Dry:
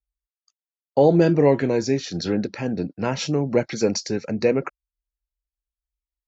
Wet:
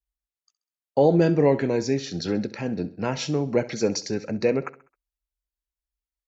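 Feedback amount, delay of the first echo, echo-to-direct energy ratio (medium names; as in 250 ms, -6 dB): 43%, 66 ms, -16.0 dB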